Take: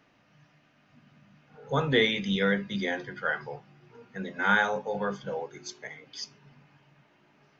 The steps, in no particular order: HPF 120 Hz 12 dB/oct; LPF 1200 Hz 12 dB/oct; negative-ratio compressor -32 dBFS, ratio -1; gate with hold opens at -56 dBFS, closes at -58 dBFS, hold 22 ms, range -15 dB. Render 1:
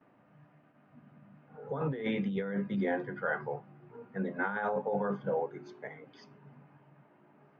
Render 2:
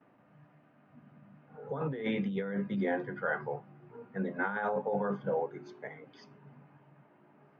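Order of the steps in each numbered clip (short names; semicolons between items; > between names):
HPF > gate with hold > LPF > negative-ratio compressor; gate with hold > LPF > negative-ratio compressor > HPF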